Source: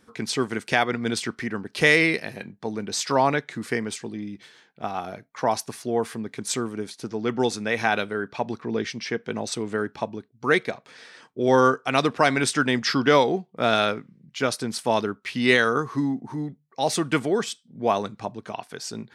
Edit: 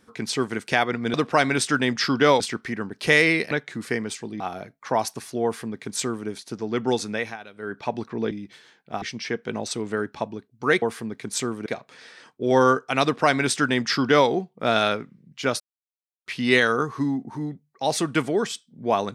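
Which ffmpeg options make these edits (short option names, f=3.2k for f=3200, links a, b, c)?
-filter_complex "[0:a]asplit=13[a][b][c][d][e][f][g][h][i][j][k][l][m];[a]atrim=end=1.142[n];[b]atrim=start=11.998:end=13.262[o];[c]atrim=start=1.138:end=2.252[p];[d]atrim=start=3.318:end=4.212[q];[e]atrim=start=4.918:end=7.89,asetpts=PTS-STARTPTS,afade=t=out:st=2.732:d=0.24:silence=0.125893[r];[f]atrim=start=7.89:end=8.05,asetpts=PTS-STARTPTS,volume=-18dB[s];[g]atrim=start=8.05:end=8.832,asetpts=PTS-STARTPTS,afade=t=in:d=0.24:silence=0.125893[t];[h]atrim=start=4.208:end=4.922[u];[i]atrim=start=8.828:end=10.632[v];[j]atrim=start=5.958:end=6.802[w];[k]atrim=start=10.628:end=14.57,asetpts=PTS-STARTPTS,afade=t=out:st=3.938:d=0.004:c=hsin[x];[l]atrim=start=14.57:end=15.23,asetpts=PTS-STARTPTS,volume=0[y];[m]atrim=start=15.23,asetpts=PTS-STARTPTS,afade=t=in:d=0.004:c=hsin[z];[n][o]acrossfade=d=0.004:c1=hsin:c2=hsin[aa];[aa][p]acrossfade=d=0.004:c1=hsin:c2=hsin[ab];[ab][q]acrossfade=d=0.004:c1=hsin:c2=hsin[ac];[r][s][t]concat=n=3:v=0:a=1[ad];[ac][ad]acrossfade=d=0.004:c1=hsin:c2=hsin[ae];[ae][u]acrossfade=d=0.004:c1=hsin:c2=hsin[af];[af][v]acrossfade=d=0.004:c1=hsin:c2=hsin[ag];[ag][w]acrossfade=d=0.004:c1=hsin:c2=hsin[ah];[x][y][z]concat=n=3:v=0:a=1[ai];[ah][ai]acrossfade=d=0.004:c1=hsin:c2=hsin"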